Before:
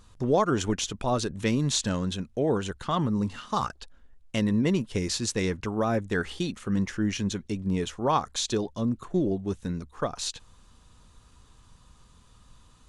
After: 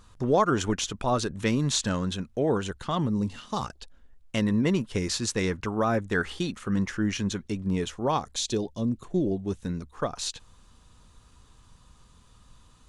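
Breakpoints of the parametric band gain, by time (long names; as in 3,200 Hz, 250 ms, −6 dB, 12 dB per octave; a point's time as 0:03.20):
parametric band 1,300 Hz 1.1 octaves
0:02.49 +3.5 dB
0:03.19 −6.5 dB
0:03.70 −6.5 dB
0:04.43 +4 dB
0:07.69 +4 dB
0:08.32 −8 dB
0:09.12 −8 dB
0:09.64 0 dB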